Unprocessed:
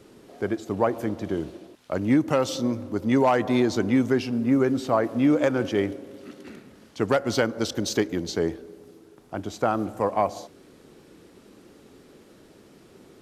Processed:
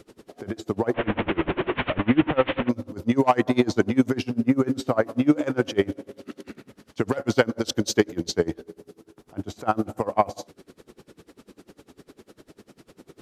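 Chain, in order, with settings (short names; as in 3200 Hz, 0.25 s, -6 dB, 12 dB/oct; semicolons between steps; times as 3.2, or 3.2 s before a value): 0.94–2.69 delta modulation 16 kbps, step -20.5 dBFS; dB-linear tremolo 10 Hz, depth 26 dB; gain +6.5 dB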